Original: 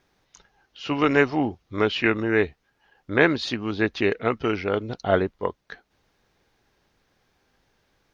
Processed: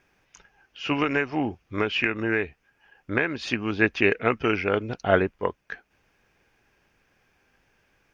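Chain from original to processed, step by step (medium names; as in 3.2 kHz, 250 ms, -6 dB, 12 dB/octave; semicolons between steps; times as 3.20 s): graphic EQ with 31 bands 1.6 kHz +5 dB, 2.5 kHz +9 dB, 4 kHz -9 dB; 0.98–3.50 s: compression 12:1, threshold -20 dBFS, peak gain reduction 11.5 dB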